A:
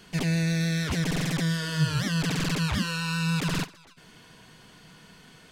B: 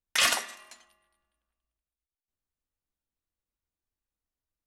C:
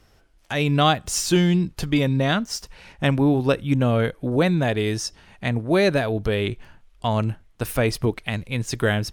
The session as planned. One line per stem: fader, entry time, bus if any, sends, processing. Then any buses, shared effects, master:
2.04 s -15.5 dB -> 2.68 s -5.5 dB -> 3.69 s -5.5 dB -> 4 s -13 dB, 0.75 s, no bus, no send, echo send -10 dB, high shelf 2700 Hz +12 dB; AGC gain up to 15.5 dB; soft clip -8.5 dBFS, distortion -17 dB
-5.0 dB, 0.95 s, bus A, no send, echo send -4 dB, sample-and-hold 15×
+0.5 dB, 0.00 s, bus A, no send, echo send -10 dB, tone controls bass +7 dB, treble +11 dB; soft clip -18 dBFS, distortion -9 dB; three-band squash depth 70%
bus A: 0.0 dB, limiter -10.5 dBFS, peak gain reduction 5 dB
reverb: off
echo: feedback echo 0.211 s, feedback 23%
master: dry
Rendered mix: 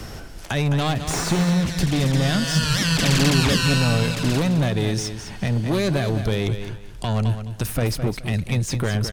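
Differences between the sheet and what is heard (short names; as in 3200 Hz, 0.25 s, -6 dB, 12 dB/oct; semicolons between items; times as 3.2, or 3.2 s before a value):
stem A: missing soft clip -8.5 dBFS, distortion -17 dB; master: extra high shelf 5800 Hz -7 dB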